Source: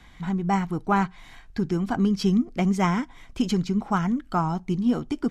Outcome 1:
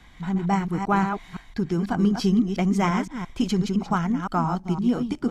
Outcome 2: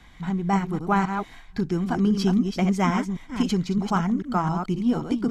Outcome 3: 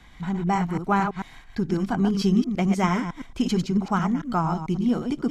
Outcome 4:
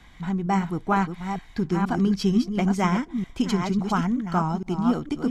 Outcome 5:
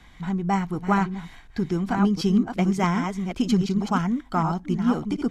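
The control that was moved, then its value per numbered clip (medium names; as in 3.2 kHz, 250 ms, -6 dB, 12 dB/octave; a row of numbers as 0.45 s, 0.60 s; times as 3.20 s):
chunks repeated in reverse, time: 171 ms, 264 ms, 111 ms, 463 ms, 738 ms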